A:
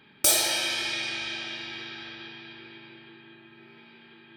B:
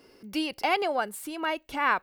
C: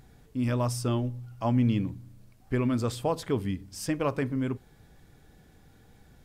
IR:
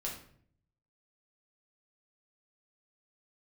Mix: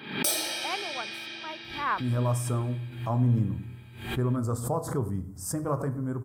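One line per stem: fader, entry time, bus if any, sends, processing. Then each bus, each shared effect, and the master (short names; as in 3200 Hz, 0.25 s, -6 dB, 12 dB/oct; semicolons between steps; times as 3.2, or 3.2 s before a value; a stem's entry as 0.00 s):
-6.0 dB, 0.00 s, no send, no echo send, HPF 170 Hz; notch 7000 Hz, Q 5.5
-13.0 dB, 0.00 s, no send, no echo send, bell 1100 Hz +6.5 dB; three-band expander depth 100%
-5.0 dB, 1.65 s, send -7 dB, echo send -18.5 dB, EQ curve 150 Hz 0 dB, 220 Hz -5 dB, 1300 Hz +3 dB, 2700 Hz -25 dB, 8000 Hz +4 dB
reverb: on, RT60 0.60 s, pre-delay 5 ms
echo: feedback echo 0.106 s, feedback 42%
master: HPF 79 Hz; low shelf 160 Hz +9.5 dB; backwards sustainer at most 85 dB/s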